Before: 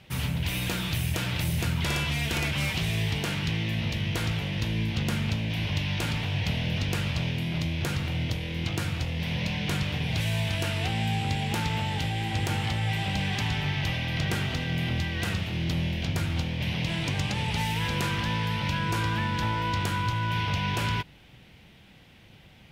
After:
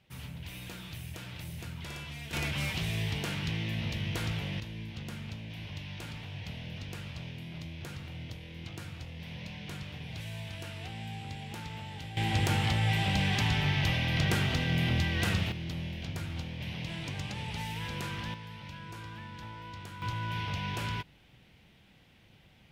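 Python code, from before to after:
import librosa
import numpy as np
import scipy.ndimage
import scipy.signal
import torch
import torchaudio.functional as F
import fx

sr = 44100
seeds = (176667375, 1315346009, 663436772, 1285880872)

y = fx.gain(x, sr, db=fx.steps((0.0, -14.0), (2.33, -5.0), (4.6, -13.0), (12.17, 0.0), (15.52, -9.0), (18.34, -16.5), (20.02, -7.0)))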